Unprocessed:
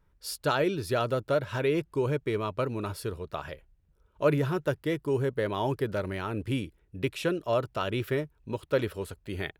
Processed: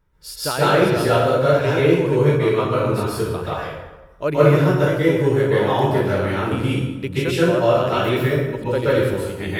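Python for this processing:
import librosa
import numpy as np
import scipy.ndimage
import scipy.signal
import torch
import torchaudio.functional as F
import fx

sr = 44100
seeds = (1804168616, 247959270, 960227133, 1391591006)

y = fx.rev_plate(x, sr, seeds[0], rt60_s=1.1, hf_ratio=0.7, predelay_ms=115, drr_db=-9.5)
y = F.gain(torch.from_numpy(y), 1.5).numpy()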